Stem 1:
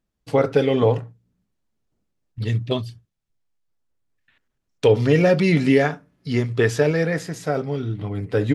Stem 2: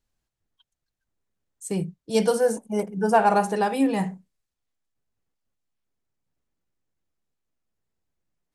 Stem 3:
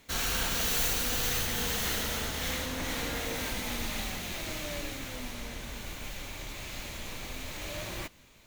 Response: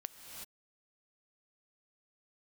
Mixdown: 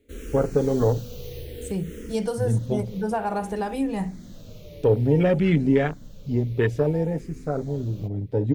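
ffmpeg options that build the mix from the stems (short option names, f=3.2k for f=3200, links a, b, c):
-filter_complex "[0:a]afwtdn=0.0631,highshelf=f=3.9k:g=6,volume=-6.5dB[a];[1:a]acompressor=threshold=-21dB:ratio=2.5,volume=-5dB,asplit=2[b][c];[2:a]lowshelf=f=610:t=q:w=3:g=10,asplit=2[d][e];[e]afreqshift=-0.58[f];[d][f]amix=inputs=2:normalize=1,volume=-13.5dB[g];[c]apad=whole_len=373164[h];[g][h]sidechaincompress=threshold=-33dB:ratio=8:attack=12:release=311[i];[a][b][i]amix=inputs=3:normalize=0,lowshelf=f=370:g=6"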